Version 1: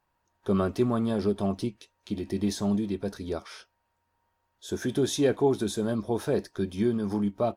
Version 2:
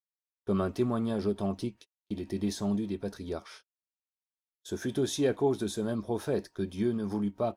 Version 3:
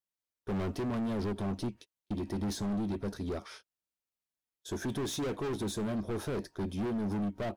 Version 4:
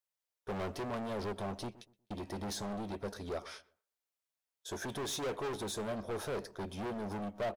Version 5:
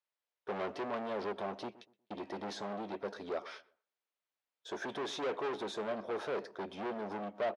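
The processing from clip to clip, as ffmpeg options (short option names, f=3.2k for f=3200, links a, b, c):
-af "agate=range=-41dB:threshold=-44dB:ratio=16:detection=peak,volume=-3.5dB"
-af "volume=35dB,asoftclip=hard,volume=-35dB,lowshelf=f=470:g=5.5"
-filter_complex "[0:a]lowshelf=f=400:t=q:w=1.5:g=-7,asplit=2[a][b];[b]adelay=121,lowpass=f=960:p=1,volume=-17dB,asplit=2[c][d];[d]adelay=121,lowpass=f=960:p=1,volume=0.3,asplit=2[e][f];[f]adelay=121,lowpass=f=960:p=1,volume=0.3[g];[a][c][e][g]amix=inputs=4:normalize=0"
-af "highpass=280,lowpass=3.5k,volume=2dB"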